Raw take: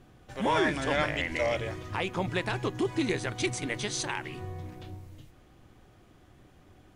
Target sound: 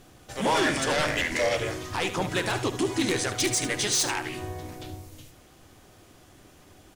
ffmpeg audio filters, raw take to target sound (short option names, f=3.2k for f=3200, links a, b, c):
-filter_complex "[0:a]bass=f=250:g=-5,treble=f=4k:g=10,aeval=exprs='0.266*sin(PI/2*2.82*val(0)/0.266)':c=same,aecho=1:1:73:0.266,asplit=2[a][b];[b]asetrate=37084,aresample=44100,atempo=1.18921,volume=-7dB[c];[a][c]amix=inputs=2:normalize=0,volume=-8.5dB"